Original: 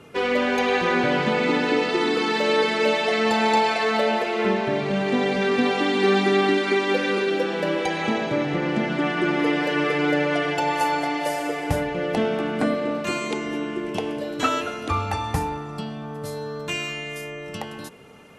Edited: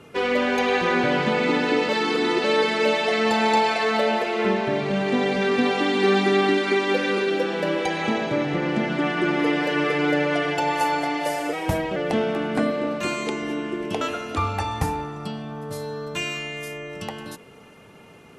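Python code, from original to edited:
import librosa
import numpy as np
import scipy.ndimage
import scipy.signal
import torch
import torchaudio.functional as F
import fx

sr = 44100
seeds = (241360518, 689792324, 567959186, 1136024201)

y = fx.edit(x, sr, fx.reverse_span(start_s=1.89, length_s=0.55),
    fx.speed_span(start_s=11.53, length_s=0.47, speed=1.09),
    fx.cut(start_s=14.05, length_s=0.49), tone=tone)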